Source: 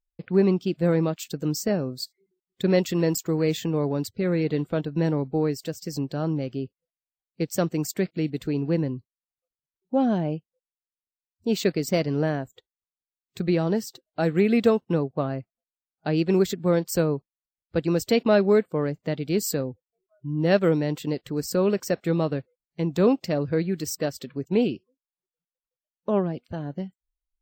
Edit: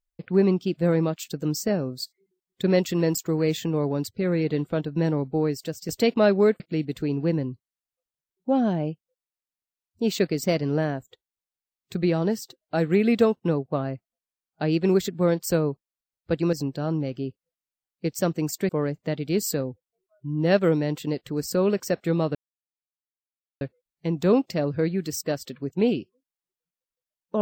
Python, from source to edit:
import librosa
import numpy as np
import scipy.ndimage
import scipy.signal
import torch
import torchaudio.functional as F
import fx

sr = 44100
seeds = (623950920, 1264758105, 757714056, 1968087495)

y = fx.edit(x, sr, fx.swap(start_s=5.89, length_s=2.16, other_s=17.98, other_length_s=0.71),
    fx.insert_silence(at_s=22.35, length_s=1.26), tone=tone)